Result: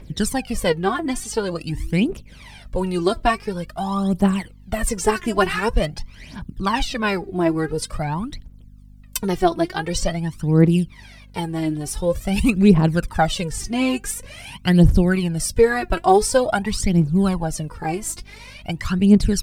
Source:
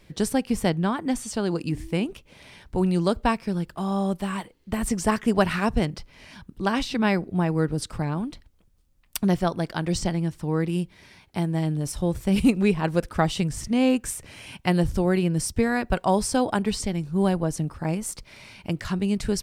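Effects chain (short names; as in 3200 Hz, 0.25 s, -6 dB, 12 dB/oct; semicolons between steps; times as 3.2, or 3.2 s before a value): phaser 0.47 Hz, delay 3.1 ms, feedback 75%; hum 50 Hz, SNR 25 dB; gain +1.5 dB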